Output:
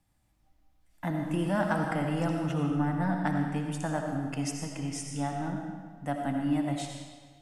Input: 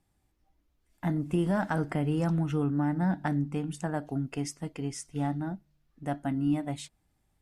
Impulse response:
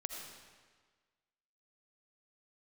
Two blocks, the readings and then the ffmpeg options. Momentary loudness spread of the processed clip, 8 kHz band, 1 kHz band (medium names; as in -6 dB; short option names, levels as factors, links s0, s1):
9 LU, +3.0 dB, +3.0 dB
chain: -filter_complex "[0:a]equalizer=f=400:t=o:w=0.31:g=-13,acrossover=split=230|1300|4300[s0][s1][s2][s3];[s0]asoftclip=type=tanh:threshold=0.0158[s4];[s4][s1][s2][s3]amix=inputs=4:normalize=0[s5];[1:a]atrim=start_sample=2205[s6];[s5][s6]afir=irnorm=-1:irlink=0,volume=1.58"